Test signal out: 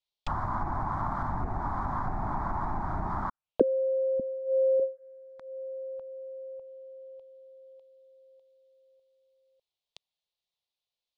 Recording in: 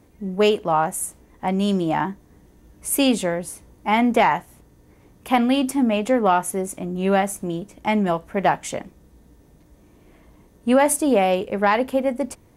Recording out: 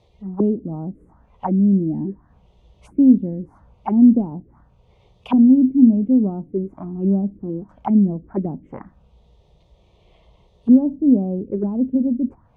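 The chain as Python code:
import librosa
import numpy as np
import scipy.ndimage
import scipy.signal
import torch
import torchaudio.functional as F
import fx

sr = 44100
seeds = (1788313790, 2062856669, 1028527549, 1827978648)

y = fx.env_phaser(x, sr, low_hz=260.0, high_hz=1900.0, full_db=-15.5)
y = fx.envelope_lowpass(y, sr, base_hz=250.0, top_hz=3800.0, q=2.9, full_db=-21.5, direction='down')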